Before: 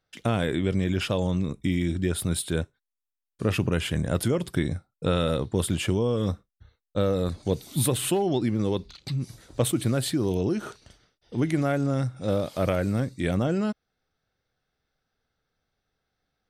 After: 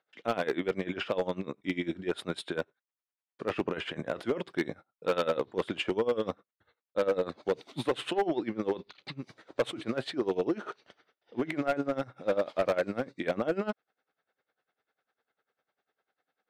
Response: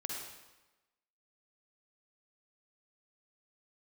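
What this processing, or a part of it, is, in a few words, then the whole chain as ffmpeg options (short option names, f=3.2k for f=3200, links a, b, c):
helicopter radio: -af "highpass=390,lowpass=2.6k,aeval=exprs='val(0)*pow(10,-19*(0.5-0.5*cos(2*PI*10*n/s))/20)':c=same,asoftclip=type=hard:threshold=-27dB,volume=6.5dB"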